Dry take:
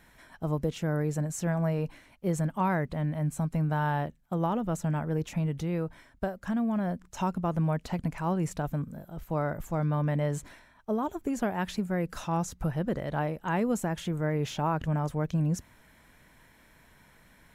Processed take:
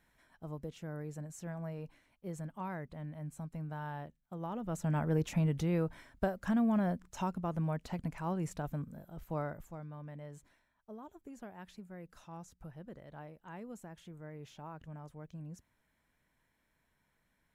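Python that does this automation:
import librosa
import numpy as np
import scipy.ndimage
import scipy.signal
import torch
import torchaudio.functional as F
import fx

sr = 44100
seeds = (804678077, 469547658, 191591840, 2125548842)

y = fx.gain(x, sr, db=fx.line((4.39, -13.5), (5.03, -1.0), (6.77, -1.0), (7.35, -7.0), (9.4, -7.0), (9.87, -19.0)))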